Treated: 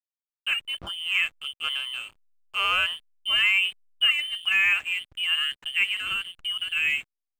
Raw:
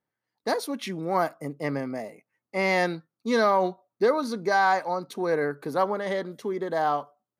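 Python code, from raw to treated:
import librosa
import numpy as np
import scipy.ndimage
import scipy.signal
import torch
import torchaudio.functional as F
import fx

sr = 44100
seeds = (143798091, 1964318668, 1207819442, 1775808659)

y = fx.freq_invert(x, sr, carrier_hz=3300)
y = fx.backlash(y, sr, play_db=-35.0)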